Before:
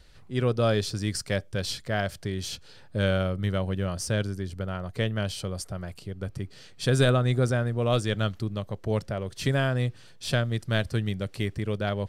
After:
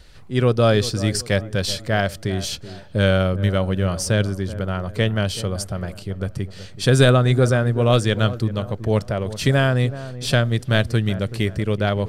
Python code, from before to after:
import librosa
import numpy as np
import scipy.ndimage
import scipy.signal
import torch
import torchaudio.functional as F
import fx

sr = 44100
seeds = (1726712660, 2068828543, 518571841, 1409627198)

y = fx.echo_wet_lowpass(x, sr, ms=379, feedback_pct=38, hz=1300.0, wet_db=-14.0)
y = F.gain(torch.from_numpy(y), 7.5).numpy()